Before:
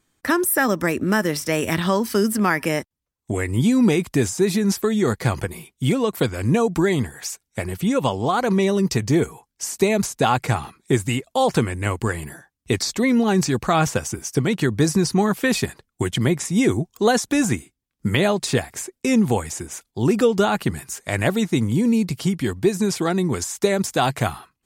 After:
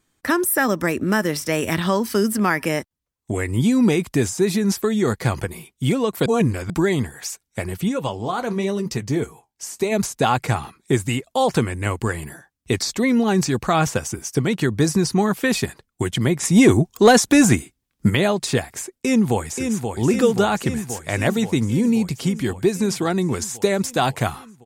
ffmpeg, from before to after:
ffmpeg -i in.wav -filter_complex "[0:a]asplit=3[link_01][link_02][link_03];[link_01]afade=type=out:start_time=7.88:duration=0.02[link_04];[link_02]flanger=delay=5:depth=8.7:regen=-59:speed=1:shape=triangular,afade=type=in:start_time=7.88:duration=0.02,afade=type=out:start_time=9.91:duration=0.02[link_05];[link_03]afade=type=in:start_time=9.91:duration=0.02[link_06];[link_04][link_05][link_06]amix=inputs=3:normalize=0,asplit=3[link_07][link_08][link_09];[link_07]afade=type=out:start_time=16.42:duration=0.02[link_10];[link_08]acontrast=70,afade=type=in:start_time=16.42:duration=0.02,afade=type=out:start_time=18.09:duration=0.02[link_11];[link_09]afade=type=in:start_time=18.09:duration=0.02[link_12];[link_10][link_11][link_12]amix=inputs=3:normalize=0,asplit=2[link_13][link_14];[link_14]afade=type=in:start_time=18.87:duration=0.01,afade=type=out:start_time=19.88:duration=0.01,aecho=0:1:530|1060|1590|2120|2650|3180|3710|4240|4770|5300|5830|6360:0.501187|0.37589|0.281918|0.211438|0.158579|0.118934|0.0892006|0.0669004|0.0501753|0.0376315|0.0282236|0.0211677[link_15];[link_13][link_15]amix=inputs=2:normalize=0,asplit=3[link_16][link_17][link_18];[link_16]atrim=end=6.262[link_19];[link_17]atrim=start=6.258:end=6.702,asetpts=PTS-STARTPTS,areverse[link_20];[link_18]atrim=start=6.698[link_21];[link_19][link_20]acrossfade=duration=0.004:curve1=hsin:curve2=hsin[link_22];[link_22][link_21]acrossfade=duration=0.004:curve1=hsin:curve2=hsin" out.wav

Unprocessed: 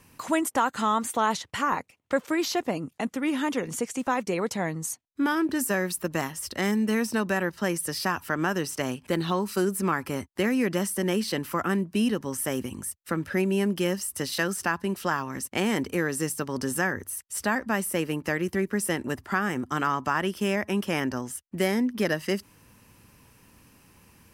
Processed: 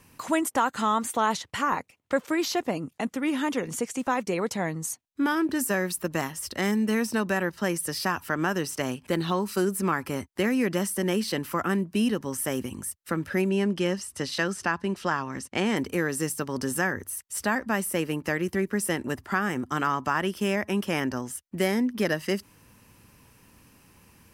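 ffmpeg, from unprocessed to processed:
ffmpeg -i in.wav -filter_complex "[0:a]asettb=1/sr,asplit=3[link_01][link_02][link_03];[link_01]atrim=end=13.494[link_04];[link_02]atrim=start=13.49:end=15.77,asetpts=PTS-STARTPTS,afade=type=in:duration=0.004:curve=qsin,afade=type=out:start_time=2.276:duration=0.004:curve=qsin,lowpass=7000[link_05];[link_03]atrim=start=15.766[link_06];[link_04][link_05]acrossfade=duration=0.004:curve1=hsin:curve2=qsin[link_07];[link_07][link_06]acrossfade=duration=0.004:curve1=qsin:curve2=hsin" out.wav

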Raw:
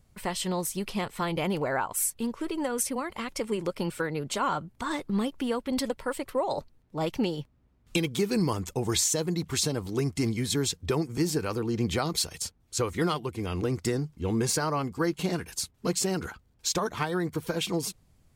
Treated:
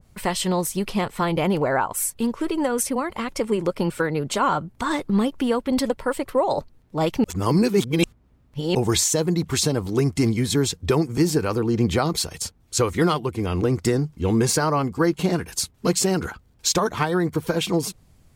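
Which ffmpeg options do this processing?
ffmpeg -i in.wav -filter_complex "[0:a]asplit=3[link_01][link_02][link_03];[link_01]atrim=end=7.242[link_04];[link_02]atrim=start=7.238:end=8.752,asetpts=PTS-STARTPTS,areverse[link_05];[link_03]atrim=start=8.748[link_06];[link_04][link_05]acrossfade=duration=0.004:curve1=hsin:curve2=hsin[link_07];[link_07][link_06]acrossfade=duration=0.004:curve1=hsin:curve2=hsin,adynamicequalizer=threshold=0.00562:dfrequency=1700:dqfactor=0.7:tfrequency=1700:tqfactor=0.7:attack=5:release=100:ratio=0.375:range=2.5:mode=cutabove:tftype=highshelf,volume=7.5dB" out.wav

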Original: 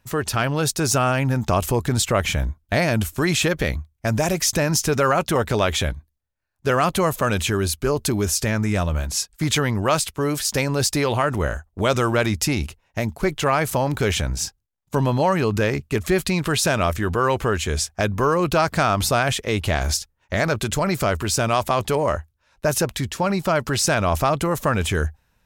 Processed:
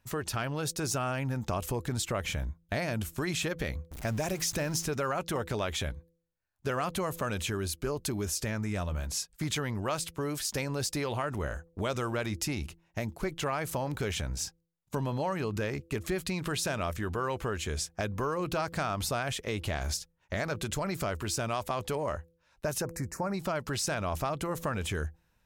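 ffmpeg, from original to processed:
ffmpeg -i in.wav -filter_complex "[0:a]asettb=1/sr,asplit=3[link_01][link_02][link_03];[link_01]atrim=end=3.914[link_04];[link_02]atrim=start=3.91:end=4.85,asetpts=PTS-STARTPTS,afade=type=in:duration=0.004:curve=qsin,afade=type=out:start_time=0.936:duration=0.004:curve=qsin,aeval=exprs='val(0)+0.5*0.0335*sgn(val(0))':channel_layout=same[link_05];[link_03]atrim=start=4.846[link_06];[link_04][link_05]acrossfade=duration=0.004:curve1=hsin:curve2=qsin[link_07];[link_07][link_06]acrossfade=duration=0.004:curve1=qsin:curve2=hsin,asettb=1/sr,asplit=3[link_08][link_09][link_10];[link_08]atrim=end=22.824[link_11];[link_09]atrim=start=22.82:end=23.34,asetpts=PTS-STARTPTS,afade=type=in:duration=0.004:curve=qsin,afade=type=out:start_time=0.516:duration=0.004:curve=qsin,asuperstop=centerf=3300:order=4:qfactor=0.91[link_12];[link_10]atrim=start=23.336[link_13];[link_11][link_12]acrossfade=duration=0.004:curve1=hsin:curve2=qsin[link_14];[link_14][link_13]acrossfade=duration=0.004:curve1=qsin:curve2=hsin,bandreject=frequency=167:width_type=h:width=4,bandreject=frequency=334:width_type=h:width=4,bandreject=frequency=501:width_type=h:width=4,acompressor=threshold=-26dB:ratio=2,volume=-6.5dB" out.wav

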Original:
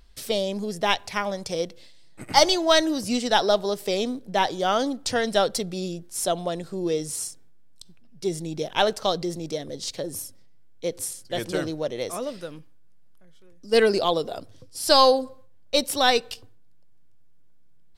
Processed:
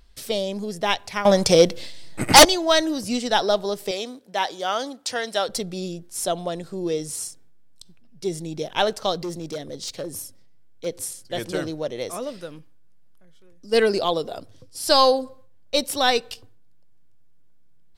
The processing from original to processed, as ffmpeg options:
ffmpeg -i in.wav -filter_complex "[0:a]asettb=1/sr,asplit=3[link_01][link_02][link_03];[link_01]atrim=end=1.254[link_04];[link_02]atrim=start=1.25:end=2.45,asetpts=PTS-STARTPTS,afade=type=in:duration=0.004:curve=qsin,afade=type=out:start_time=1.196:duration=0.004:curve=qsin,aeval=exprs='0.668*sin(PI/2*3.16*val(0)/0.668)':channel_layout=same[link_05];[link_03]atrim=start=2.446[link_06];[link_04][link_05]acrossfade=duration=0.004:curve1=hsin:curve2=qsin[link_07];[link_07][link_06]acrossfade=duration=0.004:curve1=qsin:curve2=hsin,asettb=1/sr,asplit=3[link_08][link_09][link_10];[link_08]atrim=end=3.914[link_11];[link_09]atrim=start=3.91:end=5.49,asetpts=PTS-STARTPTS,afade=type=in:duration=0.004:curve=qsin,afade=type=out:start_time=1.576:duration=0.004:curve=qsin,highpass=frequency=650:poles=1[link_12];[link_10]atrim=start=5.486[link_13];[link_11][link_12]acrossfade=duration=0.004:curve1=hsin:curve2=qsin[link_14];[link_14][link_13]acrossfade=duration=0.004:curve1=qsin:curve2=hsin,asplit=3[link_15][link_16][link_17];[link_15]afade=type=out:start_time=9.14:duration=0.02[link_18];[link_16]asoftclip=type=hard:threshold=-25.5dB,afade=type=in:start_time=9.14:duration=0.02,afade=type=out:start_time=10.85:duration=0.02[link_19];[link_17]afade=type=in:start_time=10.85:duration=0.02[link_20];[link_18][link_19][link_20]amix=inputs=3:normalize=0" out.wav

